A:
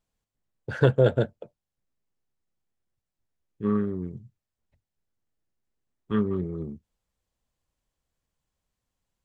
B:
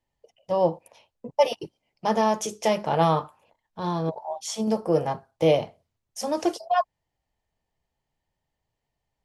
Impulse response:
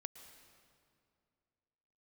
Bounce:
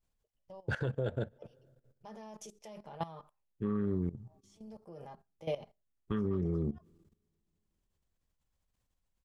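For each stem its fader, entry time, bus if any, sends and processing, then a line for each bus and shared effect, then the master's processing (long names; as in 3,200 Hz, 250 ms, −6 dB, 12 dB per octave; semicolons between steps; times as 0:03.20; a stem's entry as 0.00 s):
+2.5 dB, 0.00 s, send −17.5 dB, downward compressor 3 to 1, threshold −27 dBFS, peak gain reduction 10.5 dB
−15.0 dB, 0.00 s, no send, noise gate −51 dBFS, range −7 dB; comb filter 5 ms, depth 38%; automatic ducking −21 dB, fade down 0.20 s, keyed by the first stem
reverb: on, RT60 2.4 s, pre-delay 105 ms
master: low-shelf EQ 68 Hz +10 dB; output level in coarse steps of 16 dB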